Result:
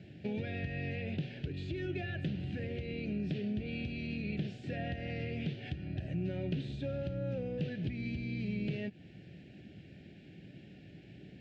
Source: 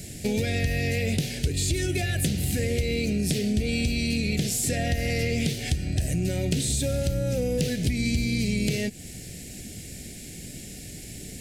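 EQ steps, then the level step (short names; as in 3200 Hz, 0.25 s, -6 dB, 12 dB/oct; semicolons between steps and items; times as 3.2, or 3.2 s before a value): speaker cabinet 140–2600 Hz, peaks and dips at 240 Hz -7 dB, 460 Hz -8 dB, 710 Hz -4 dB, 1100 Hz -10 dB, 2100 Hz -10 dB; -5.5 dB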